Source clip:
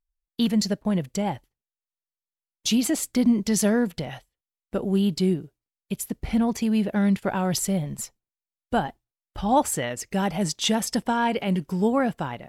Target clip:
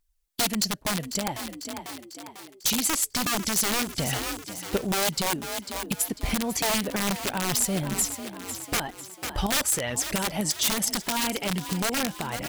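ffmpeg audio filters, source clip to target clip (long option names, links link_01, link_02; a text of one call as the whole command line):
ffmpeg -i in.wav -filter_complex "[0:a]asplit=2[link_01][link_02];[link_02]acompressor=threshold=-34dB:ratio=12,volume=0dB[link_03];[link_01][link_03]amix=inputs=2:normalize=0,aphaser=in_gain=1:out_gain=1:delay=3.9:decay=0.35:speed=1.2:type=triangular,aeval=exprs='(mod(5.62*val(0)+1,2)-1)/5.62':channel_layout=same,highshelf=frequency=9800:gain=-9,asplit=2[link_04][link_05];[link_05]asplit=5[link_06][link_07][link_08][link_09][link_10];[link_06]adelay=497,afreqshift=44,volume=-14.5dB[link_11];[link_07]adelay=994,afreqshift=88,volume=-20.5dB[link_12];[link_08]adelay=1491,afreqshift=132,volume=-26.5dB[link_13];[link_09]adelay=1988,afreqshift=176,volume=-32.6dB[link_14];[link_10]adelay=2485,afreqshift=220,volume=-38.6dB[link_15];[link_11][link_12][link_13][link_14][link_15]amix=inputs=5:normalize=0[link_16];[link_04][link_16]amix=inputs=2:normalize=0,crystalizer=i=2.5:c=0,alimiter=limit=-13.5dB:level=0:latency=1:release=254" out.wav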